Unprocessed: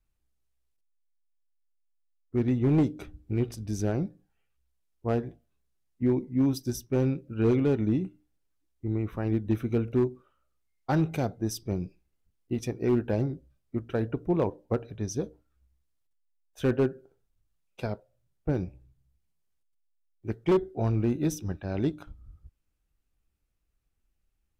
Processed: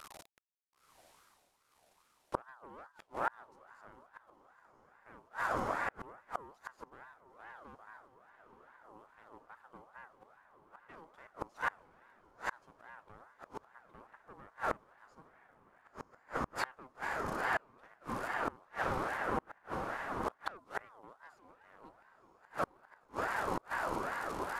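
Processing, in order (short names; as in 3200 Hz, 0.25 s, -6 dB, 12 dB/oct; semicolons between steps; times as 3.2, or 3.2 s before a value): delta modulation 64 kbps, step -47 dBFS; HPF 59 Hz 6 dB/oct; bell 790 Hz +3.5 dB 0.84 oct; added harmonics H 4 -12 dB, 7 -35 dB, 8 -39 dB, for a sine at -15 dBFS; diffused feedback echo 0.99 s, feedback 58%, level -7.5 dB; flipped gate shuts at -27 dBFS, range -35 dB; ring modulator with a swept carrier 970 Hz, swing 35%, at 2.4 Hz; gain +7.5 dB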